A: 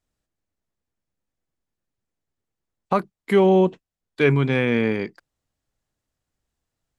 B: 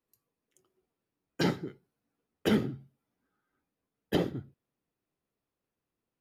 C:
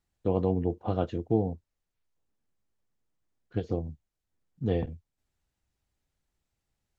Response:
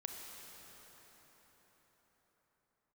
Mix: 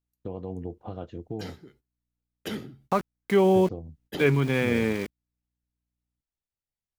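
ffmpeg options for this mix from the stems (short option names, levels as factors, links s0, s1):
-filter_complex "[0:a]aeval=exprs='val(0)*gte(abs(val(0)),0.0282)':c=same,volume=0.631[s0];[1:a]highshelf=f=2100:g=9,aeval=exprs='val(0)+0.000794*(sin(2*PI*60*n/s)+sin(2*PI*2*60*n/s)/2+sin(2*PI*3*60*n/s)/3+sin(2*PI*4*60*n/s)/4+sin(2*PI*5*60*n/s)/5)':c=same,asoftclip=type=tanh:threshold=0.251,volume=0.422[s1];[2:a]volume=0.891[s2];[s1][s2]amix=inputs=2:normalize=0,agate=range=0.178:threshold=0.00141:ratio=16:detection=peak,alimiter=limit=0.0668:level=0:latency=1:release=484,volume=1[s3];[s0][s3]amix=inputs=2:normalize=0"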